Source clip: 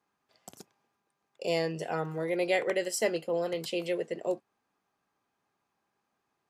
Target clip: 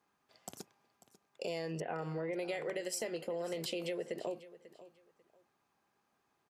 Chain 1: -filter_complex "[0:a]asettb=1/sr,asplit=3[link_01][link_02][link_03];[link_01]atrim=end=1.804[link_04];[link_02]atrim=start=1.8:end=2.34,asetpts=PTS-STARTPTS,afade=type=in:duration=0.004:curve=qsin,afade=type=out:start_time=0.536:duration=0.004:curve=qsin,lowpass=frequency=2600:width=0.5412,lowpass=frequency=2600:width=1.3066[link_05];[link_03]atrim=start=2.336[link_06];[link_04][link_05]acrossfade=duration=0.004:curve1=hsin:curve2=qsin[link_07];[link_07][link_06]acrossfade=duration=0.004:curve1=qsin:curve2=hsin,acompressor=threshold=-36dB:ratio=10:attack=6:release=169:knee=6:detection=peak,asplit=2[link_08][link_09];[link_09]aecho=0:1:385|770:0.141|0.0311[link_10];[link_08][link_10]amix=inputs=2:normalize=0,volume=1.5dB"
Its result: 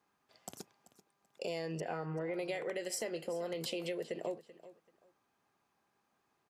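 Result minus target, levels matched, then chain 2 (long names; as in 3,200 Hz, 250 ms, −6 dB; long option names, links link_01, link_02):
echo 158 ms early
-filter_complex "[0:a]asettb=1/sr,asplit=3[link_01][link_02][link_03];[link_01]atrim=end=1.804[link_04];[link_02]atrim=start=1.8:end=2.34,asetpts=PTS-STARTPTS,afade=type=in:duration=0.004:curve=qsin,afade=type=out:start_time=0.536:duration=0.004:curve=qsin,lowpass=frequency=2600:width=0.5412,lowpass=frequency=2600:width=1.3066[link_05];[link_03]atrim=start=2.336[link_06];[link_04][link_05]acrossfade=duration=0.004:curve1=hsin:curve2=qsin[link_07];[link_07][link_06]acrossfade=duration=0.004:curve1=qsin:curve2=hsin,acompressor=threshold=-36dB:ratio=10:attack=6:release=169:knee=6:detection=peak,asplit=2[link_08][link_09];[link_09]aecho=0:1:543|1086:0.141|0.0311[link_10];[link_08][link_10]amix=inputs=2:normalize=0,volume=1.5dB"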